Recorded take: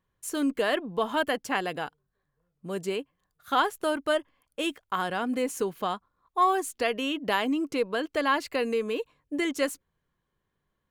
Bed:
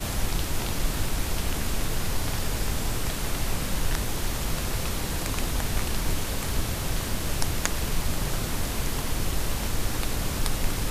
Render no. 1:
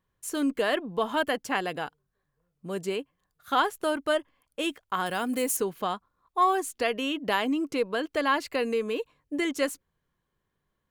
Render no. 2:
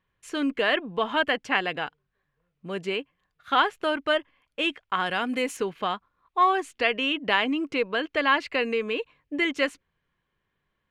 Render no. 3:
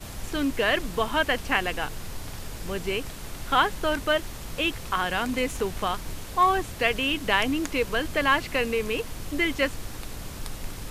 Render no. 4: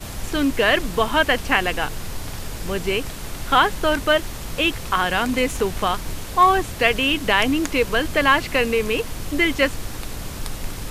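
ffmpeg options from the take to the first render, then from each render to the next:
ffmpeg -i in.wav -filter_complex "[0:a]asettb=1/sr,asplit=3[link_01][link_02][link_03];[link_01]atrim=end=5.064[link_04];[link_02]atrim=start=5.06:end=5.57,asetpts=PTS-STARTPTS,afade=type=in:duration=0.004:curve=qsin,afade=type=out:start_time=0.506:duration=0.004:curve=qsin,aemphasis=mode=production:type=50fm[link_05];[link_03]atrim=start=5.566[link_06];[link_04][link_05]acrossfade=duration=0.004:curve1=hsin:curve2=qsin[link_07];[link_07][link_06]acrossfade=duration=0.004:curve1=qsin:curve2=hsin" out.wav
ffmpeg -i in.wav -af "crystalizer=i=3:c=0,lowpass=frequency=2500:width_type=q:width=1.6" out.wav
ffmpeg -i in.wav -i bed.wav -filter_complex "[1:a]volume=-9dB[link_01];[0:a][link_01]amix=inputs=2:normalize=0" out.wav
ffmpeg -i in.wav -af "volume=6dB,alimiter=limit=-3dB:level=0:latency=1" out.wav

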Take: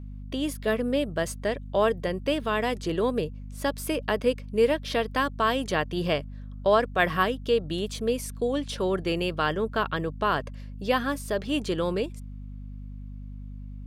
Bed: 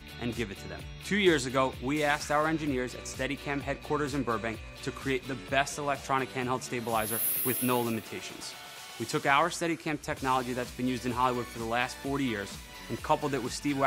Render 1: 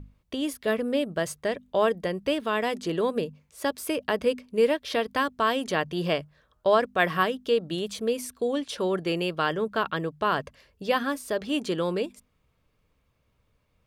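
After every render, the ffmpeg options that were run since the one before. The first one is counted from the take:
ffmpeg -i in.wav -af "bandreject=frequency=50:width_type=h:width=6,bandreject=frequency=100:width_type=h:width=6,bandreject=frequency=150:width_type=h:width=6,bandreject=frequency=200:width_type=h:width=6,bandreject=frequency=250:width_type=h:width=6" out.wav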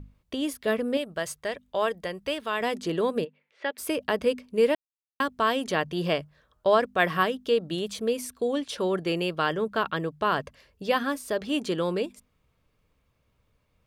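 ffmpeg -i in.wav -filter_complex "[0:a]asettb=1/sr,asplit=3[link_01][link_02][link_03];[link_01]atrim=end=0.974[link_04];[link_02]atrim=start=0.97:end=2.61,asetpts=PTS-STARTPTS,afade=type=in:duration=0.004:curve=qsin,afade=type=out:start_time=1.636:duration=0.004:curve=qsin,equalizer=frequency=230:width=0.51:gain=-8[link_05];[link_03]atrim=start=2.606[link_06];[link_04][link_05]acrossfade=duration=0.004:curve1=hsin:curve2=qsin[link_07];[link_07][link_06]acrossfade=duration=0.004:curve1=qsin:curve2=hsin,asplit=3[link_08][link_09][link_10];[link_08]afade=type=out:start_time=3.24:duration=0.02[link_11];[link_09]highpass=460,equalizer=frequency=690:width_type=q:width=4:gain=-5,equalizer=frequency=1100:width_type=q:width=4:gain=-8,equalizer=frequency=2000:width_type=q:width=4:gain=6,lowpass=frequency=3400:width=0.5412,lowpass=frequency=3400:width=1.3066,afade=type=in:start_time=3.24:duration=0.02,afade=type=out:start_time=3.77:duration=0.02[link_12];[link_10]afade=type=in:start_time=3.77:duration=0.02[link_13];[link_11][link_12][link_13]amix=inputs=3:normalize=0,asplit=3[link_14][link_15][link_16];[link_14]atrim=end=4.75,asetpts=PTS-STARTPTS,afade=type=out:start_time=4.746:duration=0.004:curve=hsin[link_17];[link_15]atrim=start=4.75:end=5.2,asetpts=PTS-STARTPTS,volume=0[link_18];[link_16]atrim=start=5.2,asetpts=PTS-STARTPTS,afade=type=in:duration=0.004:curve=hsin[link_19];[link_17][link_18][link_19]concat=n=3:v=0:a=1" out.wav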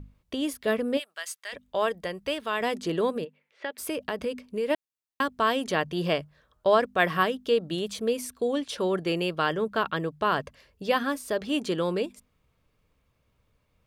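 ffmpeg -i in.wav -filter_complex "[0:a]asplit=3[link_01][link_02][link_03];[link_01]afade=type=out:start_time=0.98:duration=0.02[link_04];[link_02]highpass=1500,afade=type=in:start_time=0.98:duration=0.02,afade=type=out:start_time=1.52:duration=0.02[link_05];[link_03]afade=type=in:start_time=1.52:duration=0.02[link_06];[link_04][link_05][link_06]amix=inputs=3:normalize=0,asplit=3[link_07][link_08][link_09];[link_07]afade=type=out:start_time=3.14:duration=0.02[link_10];[link_08]acompressor=threshold=-27dB:ratio=3:attack=3.2:release=140:knee=1:detection=peak,afade=type=in:start_time=3.14:duration=0.02,afade=type=out:start_time=4.69:duration=0.02[link_11];[link_09]afade=type=in:start_time=4.69:duration=0.02[link_12];[link_10][link_11][link_12]amix=inputs=3:normalize=0" out.wav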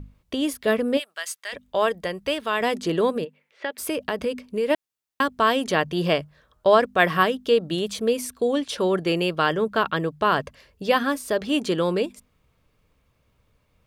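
ffmpeg -i in.wav -af "volume=4.5dB" out.wav

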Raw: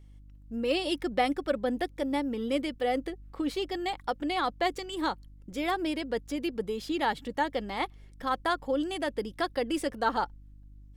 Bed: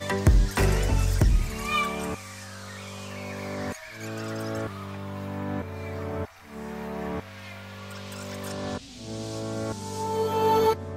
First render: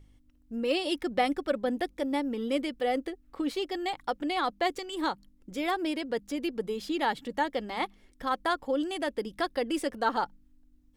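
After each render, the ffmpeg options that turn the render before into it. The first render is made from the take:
ffmpeg -i in.wav -af "bandreject=frequency=50:width_type=h:width=4,bandreject=frequency=100:width_type=h:width=4,bandreject=frequency=150:width_type=h:width=4,bandreject=frequency=200:width_type=h:width=4" out.wav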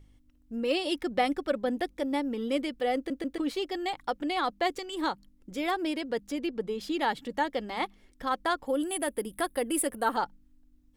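ffmpeg -i in.wav -filter_complex "[0:a]asettb=1/sr,asplit=3[link_01][link_02][link_03];[link_01]atrim=end=6.404[link_04];[link_02]atrim=start=6.4:end=6.81,asetpts=PTS-STARTPTS,afade=type=in:duration=0.004:curve=qsin,afade=type=out:start_time=0.406:duration=0.004:curve=qsin,highshelf=frequency=7700:gain=-11.5[link_05];[link_03]atrim=start=6.806[link_06];[link_04][link_05]acrossfade=duration=0.004:curve1=hsin:curve2=qsin[link_07];[link_07][link_06]acrossfade=duration=0.004:curve1=qsin:curve2=hsin,asettb=1/sr,asplit=3[link_08][link_09][link_10];[link_08]atrim=end=8.674[link_11];[link_09]atrim=start=8.67:end=10.16,asetpts=PTS-STARTPTS,afade=type=in:duration=0.004:curve=qsin,afade=type=out:start_time=1.486:duration=0.004:curve=qsin,highshelf=frequency=7700:width_type=q:width=3:gain=11[link_12];[link_10]atrim=start=10.156[link_13];[link_11][link_12]acrossfade=duration=0.004:curve1=hsin:curve2=qsin[link_14];[link_14][link_13]acrossfade=duration=0.004:curve1=qsin:curve2=hsin,asplit=4[link_15][link_16][link_17][link_18];[link_15]atrim=end=3.102[link_19];[link_16]atrim=start=2.958:end=3.102[link_20];[link_17]atrim=start=2.958:end=3.102[link_21];[link_18]atrim=start=3.378[link_22];[link_19][link_20]acrossfade=duration=0.004:curve1=hsin:curve2=hsin[link_23];[link_23][link_21]acrossfade=duration=0.004:curve1=hsin:curve2=hsin[link_24];[link_24][link_22]acrossfade=duration=0.004:curve1=hsin:curve2=hsin" out.wav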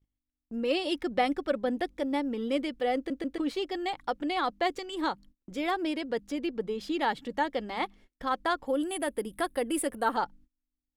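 ffmpeg -i in.wav -af "highshelf=frequency=8400:gain=-8,agate=range=-27dB:threshold=-52dB:ratio=16:detection=peak" out.wav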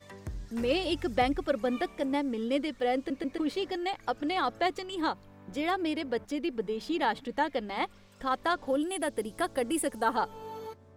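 ffmpeg -i in.wav -i bed.wav -filter_complex "[1:a]volume=-20.5dB[link_01];[0:a][link_01]amix=inputs=2:normalize=0" out.wav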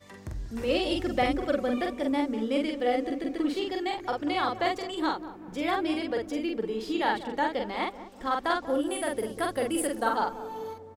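ffmpeg -i in.wav -filter_complex "[0:a]asplit=2[link_01][link_02];[link_02]adelay=45,volume=-3dB[link_03];[link_01][link_03]amix=inputs=2:normalize=0,asplit=2[link_04][link_05];[link_05]adelay=191,lowpass=frequency=800:poles=1,volume=-11dB,asplit=2[link_06][link_07];[link_07]adelay=191,lowpass=frequency=800:poles=1,volume=0.55,asplit=2[link_08][link_09];[link_09]adelay=191,lowpass=frequency=800:poles=1,volume=0.55,asplit=2[link_10][link_11];[link_11]adelay=191,lowpass=frequency=800:poles=1,volume=0.55,asplit=2[link_12][link_13];[link_13]adelay=191,lowpass=frequency=800:poles=1,volume=0.55,asplit=2[link_14][link_15];[link_15]adelay=191,lowpass=frequency=800:poles=1,volume=0.55[link_16];[link_04][link_06][link_08][link_10][link_12][link_14][link_16]amix=inputs=7:normalize=0" out.wav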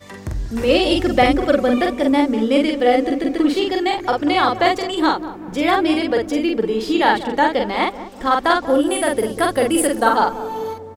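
ffmpeg -i in.wav -af "volume=11.5dB,alimiter=limit=-3dB:level=0:latency=1" out.wav

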